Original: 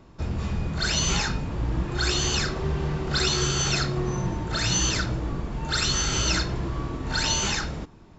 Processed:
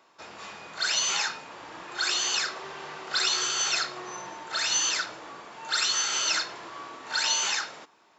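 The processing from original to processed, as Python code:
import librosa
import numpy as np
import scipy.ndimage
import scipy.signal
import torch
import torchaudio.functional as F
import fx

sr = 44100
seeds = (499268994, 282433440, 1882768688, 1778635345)

y = scipy.signal.sosfilt(scipy.signal.butter(2, 780.0, 'highpass', fs=sr, output='sos'), x)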